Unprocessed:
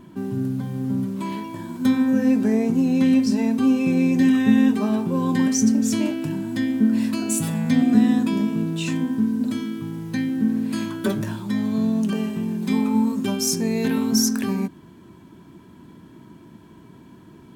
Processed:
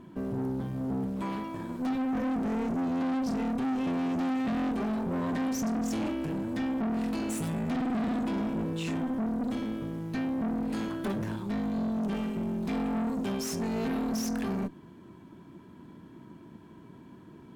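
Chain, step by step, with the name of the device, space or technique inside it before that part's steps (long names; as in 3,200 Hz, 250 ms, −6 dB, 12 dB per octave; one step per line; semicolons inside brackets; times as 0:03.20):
0:07.58–0:08.08: high-pass filter 130 Hz 24 dB per octave
tube preamp driven hard (tube saturation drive 27 dB, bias 0.6; low-shelf EQ 120 Hz −4 dB; high-shelf EQ 3,300 Hz −8 dB)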